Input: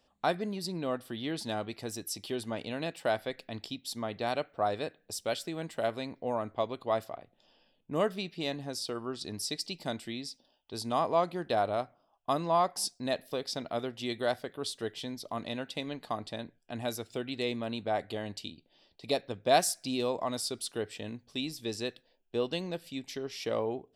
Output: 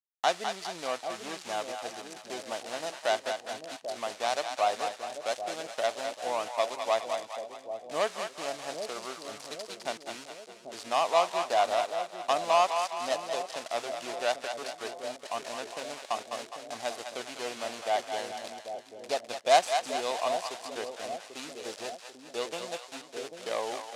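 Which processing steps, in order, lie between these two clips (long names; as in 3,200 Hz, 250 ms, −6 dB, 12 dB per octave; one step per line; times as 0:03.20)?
running median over 25 samples
parametric band 730 Hz +7.5 dB 1.1 octaves
centre clipping without the shift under −43 dBFS
meter weighting curve ITU-R 468
on a send: echo with a time of its own for lows and highs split 640 Hz, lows 791 ms, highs 206 ms, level −6 dB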